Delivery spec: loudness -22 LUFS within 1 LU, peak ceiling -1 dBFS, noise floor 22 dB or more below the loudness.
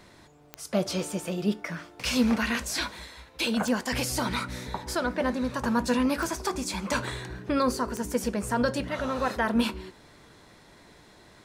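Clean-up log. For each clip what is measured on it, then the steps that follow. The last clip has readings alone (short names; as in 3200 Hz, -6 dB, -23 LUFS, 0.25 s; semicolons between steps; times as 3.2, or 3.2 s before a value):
clicks 4; loudness -28.5 LUFS; peak -12.5 dBFS; loudness target -22.0 LUFS
-> de-click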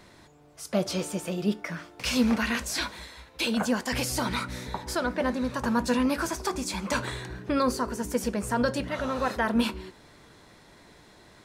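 clicks 0; loudness -28.5 LUFS; peak -12.5 dBFS; loudness target -22.0 LUFS
-> gain +6.5 dB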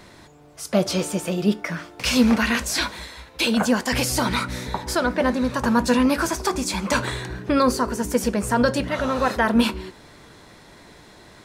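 loudness -22.0 LUFS; peak -6.0 dBFS; noise floor -48 dBFS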